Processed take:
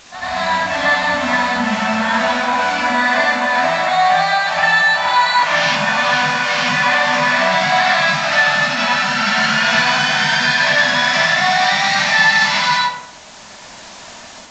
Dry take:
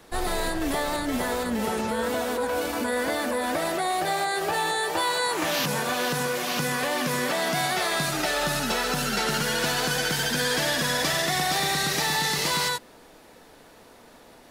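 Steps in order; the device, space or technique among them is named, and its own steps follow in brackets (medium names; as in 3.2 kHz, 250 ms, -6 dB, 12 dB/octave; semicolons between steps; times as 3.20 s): Chebyshev band-stop 200–790 Hz, order 2; dynamic bell 2.2 kHz, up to +5 dB, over -42 dBFS, Q 1; filmed off a television (band-pass 200–6600 Hz; peaking EQ 580 Hz +8.5 dB 0.36 oct; reverberation RT60 0.70 s, pre-delay 82 ms, DRR -8.5 dB; white noise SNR 21 dB; level rider gain up to 6 dB; trim -1 dB; AAC 32 kbps 16 kHz)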